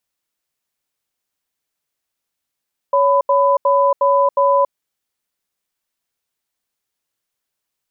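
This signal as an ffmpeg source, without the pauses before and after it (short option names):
-f lavfi -i "aevalsrc='0.211*(sin(2*PI*560*t)+sin(2*PI*1000*t))*clip(min(mod(t,0.36),0.28-mod(t,0.36))/0.005,0,1)':d=1.77:s=44100"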